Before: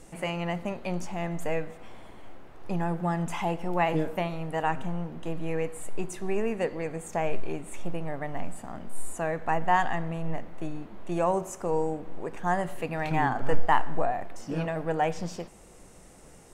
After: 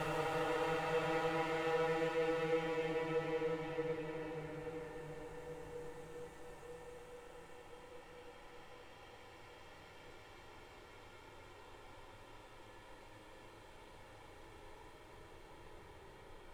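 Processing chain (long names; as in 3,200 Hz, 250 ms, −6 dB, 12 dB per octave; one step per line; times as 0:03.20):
lower of the sound and its delayed copy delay 2.2 ms
extreme stretch with random phases 25×, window 0.25 s, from 0:01.49
level −6 dB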